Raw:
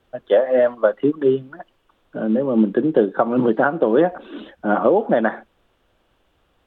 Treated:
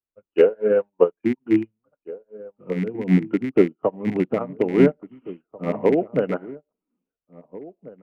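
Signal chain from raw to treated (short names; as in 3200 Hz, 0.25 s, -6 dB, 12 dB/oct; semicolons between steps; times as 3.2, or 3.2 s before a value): rattling part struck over -23 dBFS, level -19 dBFS; dynamic EQ 1400 Hz, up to -7 dB, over -39 dBFS, Q 3; varispeed -17%; outdoor echo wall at 290 m, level -7 dB; upward expander 2.5:1, over -37 dBFS; gain +1.5 dB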